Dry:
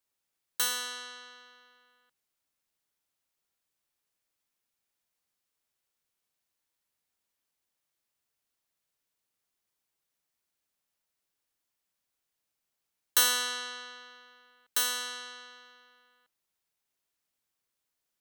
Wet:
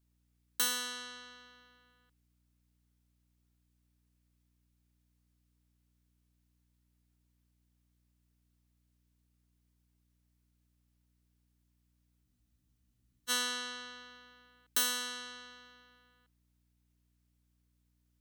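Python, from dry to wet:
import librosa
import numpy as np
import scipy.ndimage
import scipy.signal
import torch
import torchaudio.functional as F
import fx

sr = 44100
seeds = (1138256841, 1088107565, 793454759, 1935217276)

y = fx.low_shelf_res(x, sr, hz=430.0, db=6.5, q=1.5)
y = fx.add_hum(y, sr, base_hz=60, snr_db=32)
y = fx.spec_freeze(y, sr, seeds[0], at_s=12.27, hold_s=1.02)
y = y * 10.0 ** (-2.0 / 20.0)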